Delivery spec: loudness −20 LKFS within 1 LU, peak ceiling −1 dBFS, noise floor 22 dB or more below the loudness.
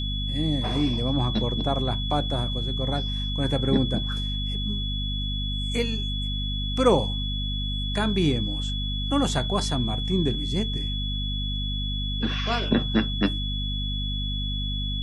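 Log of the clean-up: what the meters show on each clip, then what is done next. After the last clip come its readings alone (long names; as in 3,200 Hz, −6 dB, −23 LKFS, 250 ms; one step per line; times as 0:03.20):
mains hum 50 Hz; hum harmonics up to 250 Hz; level of the hum −26 dBFS; interfering tone 3,400 Hz; level of the tone −31 dBFS; integrated loudness −26.0 LKFS; sample peak −7.0 dBFS; target loudness −20.0 LKFS
→ mains-hum notches 50/100/150/200/250 Hz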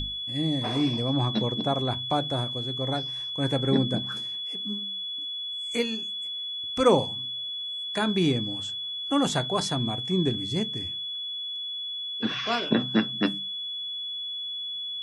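mains hum none found; interfering tone 3,400 Hz; level of the tone −31 dBFS
→ notch filter 3,400 Hz, Q 30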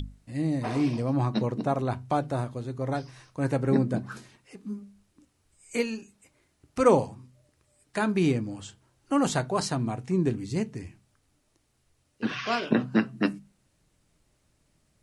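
interfering tone none found; integrated loudness −28.0 LKFS; sample peak −8.0 dBFS; target loudness −20.0 LKFS
→ level +8 dB
brickwall limiter −1 dBFS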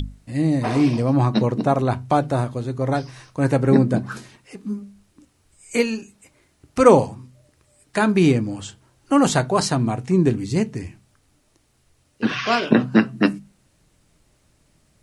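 integrated loudness −20.0 LKFS; sample peak −1.0 dBFS; background noise floor −63 dBFS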